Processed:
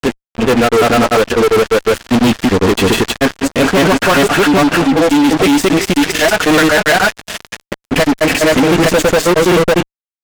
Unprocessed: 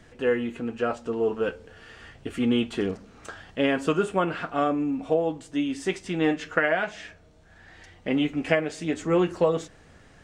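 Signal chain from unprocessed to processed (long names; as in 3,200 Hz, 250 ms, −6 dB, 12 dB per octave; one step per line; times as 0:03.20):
granular cloud 100 ms, grains 20 per second, spray 536 ms
fuzz pedal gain 38 dB, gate −42 dBFS
level +5.5 dB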